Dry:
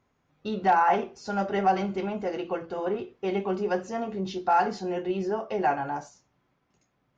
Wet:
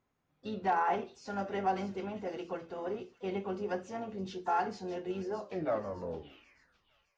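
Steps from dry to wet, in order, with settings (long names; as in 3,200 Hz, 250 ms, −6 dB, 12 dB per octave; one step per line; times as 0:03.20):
turntable brake at the end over 1.85 s
pitch-shifted copies added −12 semitones −17 dB, +4 semitones −15 dB
delay with a high-pass on its return 613 ms, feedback 43%, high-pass 4,000 Hz, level −7.5 dB
level −8.5 dB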